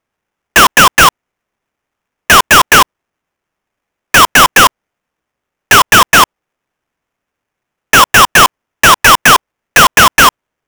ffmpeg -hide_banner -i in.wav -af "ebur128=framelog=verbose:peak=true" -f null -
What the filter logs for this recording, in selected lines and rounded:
Integrated loudness:
  I:          -6.2 LUFS
  Threshold: -16.2 LUFS
Loudness range:
  LRA:         3.4 LU
  Threshold: -28.8 LUFS
  LRA low:   -10.4 LUFS
  LRA high:   -7.0 LUFS
True peak:
  Peak:       -0.7 dBFS